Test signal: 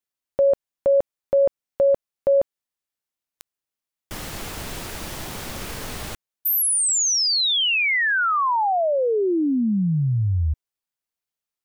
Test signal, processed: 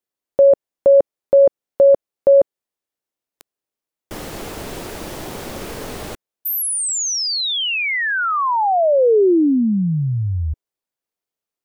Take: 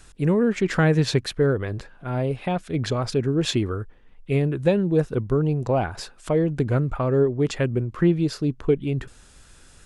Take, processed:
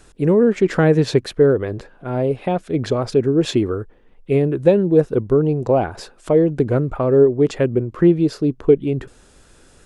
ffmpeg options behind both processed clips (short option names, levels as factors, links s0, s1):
-af "equalizer=f=420:w=0.65:g=9,volume=0.891"